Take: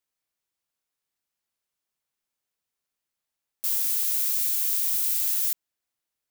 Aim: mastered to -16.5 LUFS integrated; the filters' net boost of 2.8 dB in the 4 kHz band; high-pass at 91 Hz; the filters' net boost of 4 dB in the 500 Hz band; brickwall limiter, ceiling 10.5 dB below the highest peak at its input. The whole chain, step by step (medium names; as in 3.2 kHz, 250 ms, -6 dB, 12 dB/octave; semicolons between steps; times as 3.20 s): high-pass 91 Hz; peaking EQ 500 Hz +5 dB; peaking EQ 4 kHz +3.5 dB; trim +13 dB; peak limiter -9.5 dBFS